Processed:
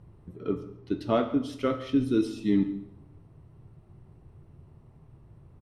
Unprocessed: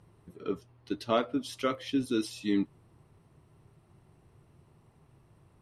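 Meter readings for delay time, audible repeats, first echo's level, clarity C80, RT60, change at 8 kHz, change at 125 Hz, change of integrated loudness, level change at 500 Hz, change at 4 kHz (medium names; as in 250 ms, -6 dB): 141 ms, 1, -19.5 dB, 13.0 dB, 0.75 s, no reading, +8.0 dB, +4.0 dB, +3.0 dB, -4.0 dB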